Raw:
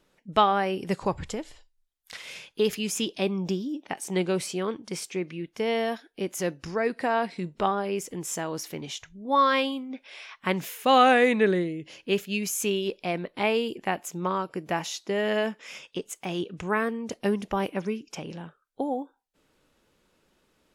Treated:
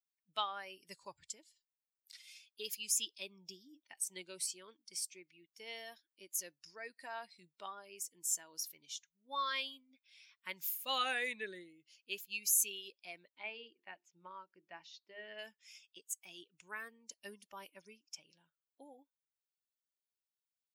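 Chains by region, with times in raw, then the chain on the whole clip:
13.30–15.39 s: distance through air 230 m + hum notches 50/100/150/200/250/300/350/400/450 Hz
whole clip: expander on every frequency bin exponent 1.5; differentiator; band-stop 750 Hz, Q 16; trim +1 dB

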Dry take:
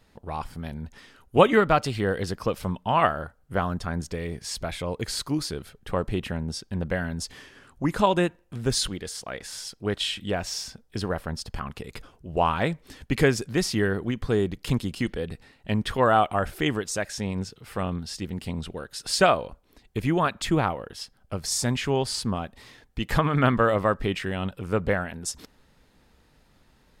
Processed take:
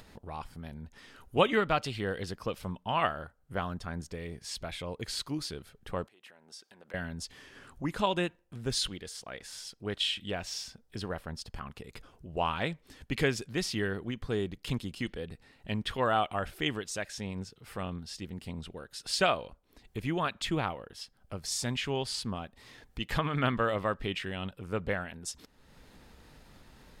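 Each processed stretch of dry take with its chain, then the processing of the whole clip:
6.07–6.94 s: compression 12:1, threshold -39 dBFS + high-pass 580 Hz
whole clip: dynamic bell 3.1 kHz, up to +7 dB, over -43 dBFS, Q 1.1; upward compressor, threshold -33 dBFS; trim -8.5 dB

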